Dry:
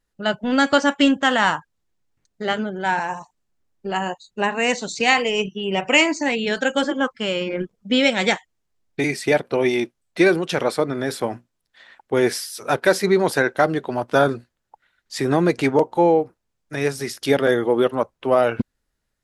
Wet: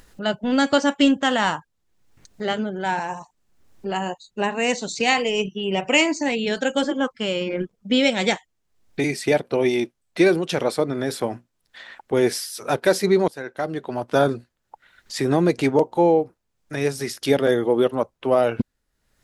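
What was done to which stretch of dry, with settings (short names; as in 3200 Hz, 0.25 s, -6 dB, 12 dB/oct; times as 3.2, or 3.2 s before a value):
13.28–14.21 fade in, from -20.5 dB
whole clip: dynamic EQ 1500 Hz, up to -5 dB, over -32 dBFS, Q 0.91; upward compressor, threshold -33 dBFS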